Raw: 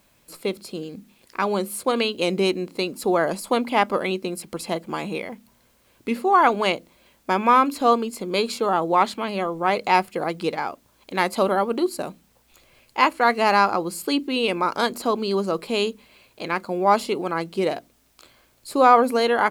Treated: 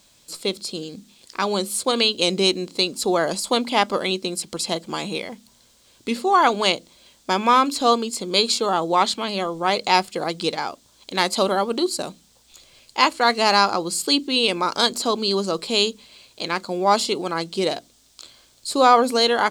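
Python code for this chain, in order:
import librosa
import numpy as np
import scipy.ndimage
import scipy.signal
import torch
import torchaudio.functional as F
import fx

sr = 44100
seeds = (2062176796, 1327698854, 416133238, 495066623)

y = fx.band_shelf(x, sr, hz=5300.0, db=11.0, octaves=1.7)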